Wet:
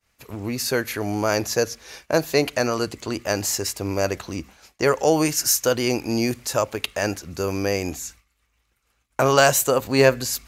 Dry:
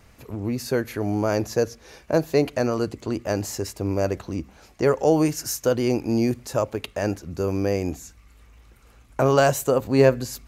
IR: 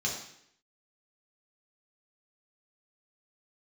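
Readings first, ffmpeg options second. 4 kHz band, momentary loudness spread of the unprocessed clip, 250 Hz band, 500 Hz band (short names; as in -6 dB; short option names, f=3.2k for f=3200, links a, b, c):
+9.0 dB, 11 LU, -1.5 dB, 0.0 dB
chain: -af "tiltshelf=f=940:g=-6,agate=range=-33dB:threshold=-42dB:ratio=3:detection=peak,volume=3.5dB"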